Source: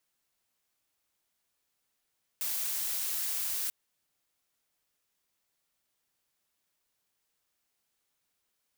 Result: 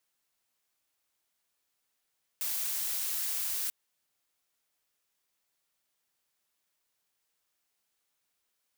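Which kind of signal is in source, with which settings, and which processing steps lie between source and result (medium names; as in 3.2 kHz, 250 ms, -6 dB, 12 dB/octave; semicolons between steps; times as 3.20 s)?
noise blue, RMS -33 dBFS 1.29 s
bass shelf 330 Hz -5 dB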